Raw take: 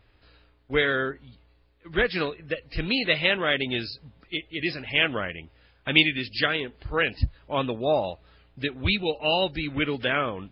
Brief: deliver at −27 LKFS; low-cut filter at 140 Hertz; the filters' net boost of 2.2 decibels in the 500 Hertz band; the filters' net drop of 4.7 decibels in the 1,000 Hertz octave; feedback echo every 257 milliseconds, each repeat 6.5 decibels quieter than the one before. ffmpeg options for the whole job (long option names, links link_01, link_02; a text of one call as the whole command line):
ffmpeg -i in.wav -af "highpass=140,equalizer=frequency=500:width_type=o:gain=5,equalizer=frequency=1000:width_type=o:gain=-9,aecho=1:1:257|514|771|1028|1285|1542:0.473|0.222|0.105|0.0491|0.0231|0.0109,volume=-1.5dB" out.wav